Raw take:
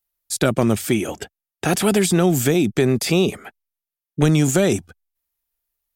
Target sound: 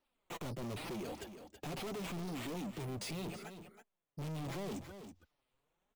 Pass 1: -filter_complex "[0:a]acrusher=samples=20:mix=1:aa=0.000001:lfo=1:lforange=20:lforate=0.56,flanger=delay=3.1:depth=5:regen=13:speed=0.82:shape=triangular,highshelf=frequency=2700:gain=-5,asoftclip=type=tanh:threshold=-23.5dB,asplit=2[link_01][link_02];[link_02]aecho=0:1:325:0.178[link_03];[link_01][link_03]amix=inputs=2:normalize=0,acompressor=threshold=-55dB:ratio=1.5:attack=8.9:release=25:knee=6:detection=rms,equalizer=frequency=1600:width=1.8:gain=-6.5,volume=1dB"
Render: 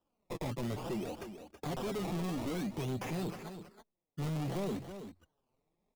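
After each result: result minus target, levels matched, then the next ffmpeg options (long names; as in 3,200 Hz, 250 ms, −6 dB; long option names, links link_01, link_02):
sample-and-hold swept by an LFO: distortion +6 dB; soft clipping: distortion −4 dB
-filter_complex "[0:a]acrusher=samples=6:mix=1:aa=0.000001:lfo=1:lforange=6:lforate=0.56,flanger=delay=3.1:depth=5:regen=13:speed=0.82:shape=triangular,highshelf=frequency=2700:gain=-5,asoftclip=type=tanh:threshold=-23.5dB,asplit=2[link_01][link_02];[link_02]aecho=0:1:325:0.178[link_03];[link_01][link_03]amix=inputs=2:normalize=0,acompressor=threshold=-55dB:ratio=1.5:attack=8.9:release=25:knee=6:detection=rms,equalizer=frequency=1600:width=1.8:gain=-6.5,volume=1dB"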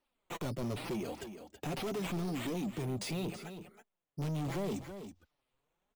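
soft clipping: distortion −4 dB
-filter_complex "[0:a]acrusher=samples=6:mix=1:aa=0.000001:lfo=1:lforange=6:lforate=0.56,flanger=delay=3.1:depth=5:regen=13:speed=0.82:shape=triangular,highshelf=frequency=2700:gain=-5,asoftclip=type=tanh:threshold=-33.5dB,asplit=2[link_01][link_02];[link_02]aecho=0:1:325:0.178[link_03];[link_01][link_03]amix=inputs=2:normalize=0,acompressor=threshold=-55dB:ratio=1.5:attack=8.9:release=25:knee=6:detection=rms,equalizer=frequency=1600:width=1.8:gain=-6.5,volume=1dB"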